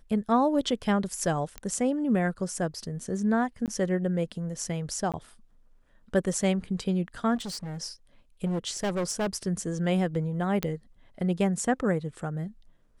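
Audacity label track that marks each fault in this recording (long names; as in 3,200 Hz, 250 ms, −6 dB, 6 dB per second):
1.580000	1.580000	click −21 dBFS
3.660000	3.680000	drop-out 18 ms
5.120000	5.140000	drop-out 17 ms
7.350000	7.820000	clipping −32.5 dBFS
8.450000	9.380000	clipping −24.5 dBFS
10.630000	10.630000	click −12 dBFS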